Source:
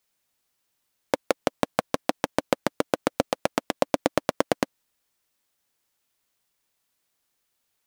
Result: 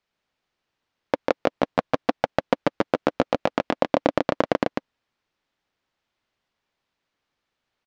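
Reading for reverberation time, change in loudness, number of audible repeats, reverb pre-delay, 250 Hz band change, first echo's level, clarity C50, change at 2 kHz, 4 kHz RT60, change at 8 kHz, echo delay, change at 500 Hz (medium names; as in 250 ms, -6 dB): no reverb, +2.5 dB, 1, no reverb, +3.0 dB, -3.5 dB, no reverb, +1.5 dB, no reverb, under -10 dB, 146 ms, +3.0 dB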